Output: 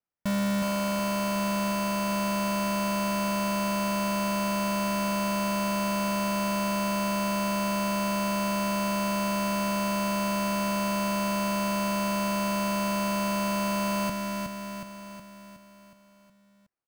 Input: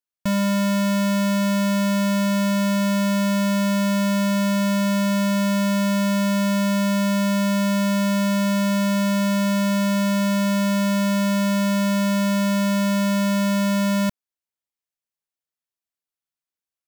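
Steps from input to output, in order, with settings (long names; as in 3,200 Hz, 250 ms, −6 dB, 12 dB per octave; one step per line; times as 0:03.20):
repeating echo 367 ms, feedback 55%, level −4 dB
decimation without filtering 12×
level −6 dB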